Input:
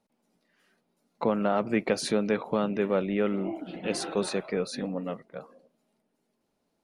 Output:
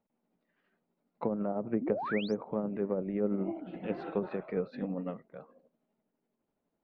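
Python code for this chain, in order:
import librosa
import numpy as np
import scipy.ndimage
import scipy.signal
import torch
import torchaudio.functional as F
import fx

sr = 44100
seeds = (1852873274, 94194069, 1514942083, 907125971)

y = fx.env_lowpass_down(x, sr, base_hz=630.0, full_db=-21.0)
y = fx.hpss(y, sr, part='harmonic', gain_db=3, at=(3.2, 5.21))
y = y * (1.0 - 0.39 / 2.0 + 0.39 / 2.0 * np.cos(2.0 * np.pi * 12.0 * (np.arange(len(y)) / sr)))
y = fx.spec_paint(y, sr, seeds[0], shape='rise', start_s=1.81, length_s=0.54, low_hz=220.0, high_hz=6700.0, level_db=-31.0)
y = fx.air_absorb(y, sr, metres=420.0)
y = F.gain(torch.from_numpy(y), -3.0).numpy()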